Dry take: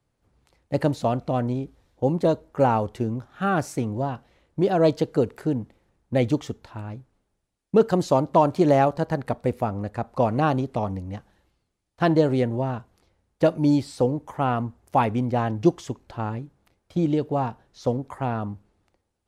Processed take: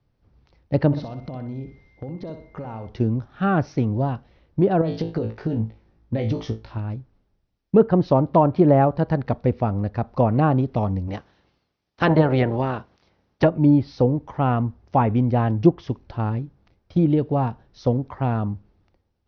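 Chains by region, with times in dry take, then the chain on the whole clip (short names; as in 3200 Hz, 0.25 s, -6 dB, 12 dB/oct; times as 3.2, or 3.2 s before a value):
0.92–2.88 compressor 8:1, threshold -34 dBFS + whine 2100 Hz -60 dBFS + flutter echo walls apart 10.6 m, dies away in 0.4 s
4.81–6.78 flutter echo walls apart 3.1 m, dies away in 0.22 s + compressor 12:1, threshold -23 dBFS
11.07–13.44 spectral limiter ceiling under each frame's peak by 16 dB + HPF 50 Hz
whole clip: treble ducked by the level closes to 1700 Hz, closed at -15.5 dBFS; steep low-pass 5900 Hz 96 dB/oct; low shelf 240 Hz +8.5 dB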